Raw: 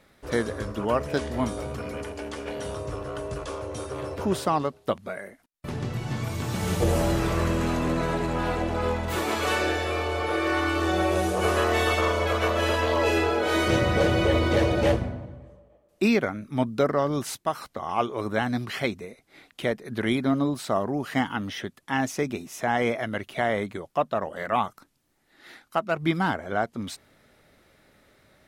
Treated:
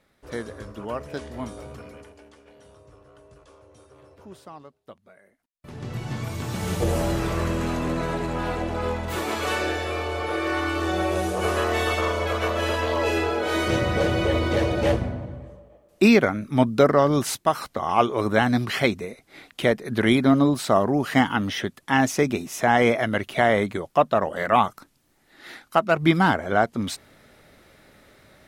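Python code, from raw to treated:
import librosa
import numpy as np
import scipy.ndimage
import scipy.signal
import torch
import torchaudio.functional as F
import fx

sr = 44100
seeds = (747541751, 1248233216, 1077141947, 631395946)

y = fx.gain(x, sr, db=fx.line((1.76, -6.5), (2.43, -18.5), (5.2, -18.5), (5.71, -8.0), (5.95, -0.5), (14.8, -0.5), (15.36, 6.0)))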